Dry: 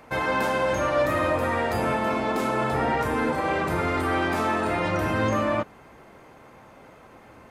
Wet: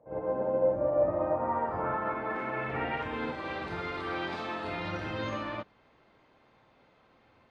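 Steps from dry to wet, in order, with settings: low-pass sweep 570 Hz -> 4 kHz, 0.86–3.43 s; reverse echo 52 ms -5.5 dB; upward expansion 1.5:1, over -31 dBFS; trim -7.5 dB

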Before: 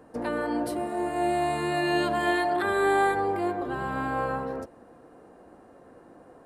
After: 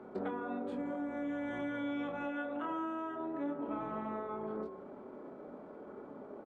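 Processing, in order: three-band isolator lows -13 dB, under 240 Hz, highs -16 dB, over 3.1 kHz; de-hum 46.94 Hz, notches 32; compression 12:1, threshold -39 dBFS, peak gain reduction 20 dB; doubling 26 ms -6 dB; pitch shift -3.5 st; resonant high shelf 5.6 kHz -6.5 dB, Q 1.5; trim +3.5 dB

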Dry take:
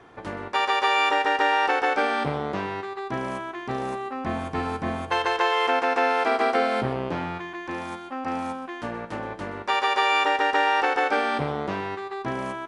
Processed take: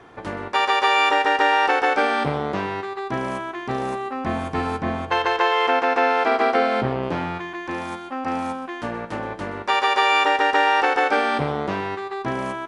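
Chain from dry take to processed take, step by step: 4.78–7.03 s: distance through air 68 m; trim +3.5 dB

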